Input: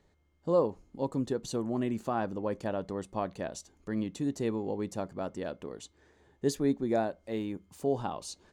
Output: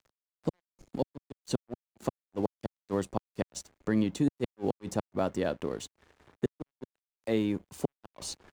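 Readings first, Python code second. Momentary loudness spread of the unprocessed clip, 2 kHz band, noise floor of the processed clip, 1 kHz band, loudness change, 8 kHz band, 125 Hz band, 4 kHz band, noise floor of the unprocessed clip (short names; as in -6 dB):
11 LU, +0.5 dB, under -85 dBFS, -4.5 dB, -1.0 dB, +1.0 dB, +0.5 dB, +2.0 dB, -69 dBFS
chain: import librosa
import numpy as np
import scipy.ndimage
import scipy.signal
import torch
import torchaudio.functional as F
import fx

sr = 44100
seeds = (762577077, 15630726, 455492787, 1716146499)

y = fx.gate_flip(x, sr, shuts_db=-23.0, range_db=-41)
y = np.sign(y) * np.maximum(np.abs(y) - 10.0 ** (-60.0 / 20.0), 0.0)
y = fx.band_squash(y, sr, depth_pct=40)
y = y * librosa.db_to_amplitude(7.0)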